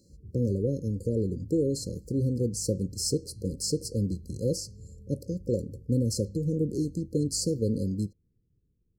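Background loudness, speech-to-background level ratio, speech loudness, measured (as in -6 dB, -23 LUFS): -49.0 LUFS, 19.0 dB, -30.0 LUFS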